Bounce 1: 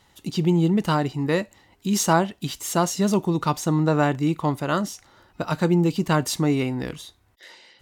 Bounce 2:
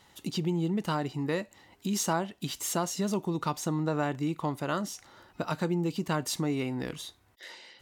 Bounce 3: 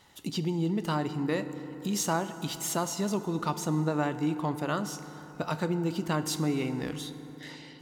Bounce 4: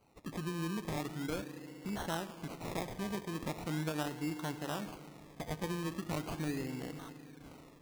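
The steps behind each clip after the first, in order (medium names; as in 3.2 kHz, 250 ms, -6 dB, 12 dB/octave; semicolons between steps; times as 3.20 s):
compression 2:1, threshold -32 dBFS, peak gain reduction 10.5 dB; bass shelf 74 Hz -10 dB
FDN reverb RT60 4 s, high-frequency decay 0.45×, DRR 10.5 dB
decimation with a swept rate 25×, swing 60% 0.4 Hz; trim -8.5 dB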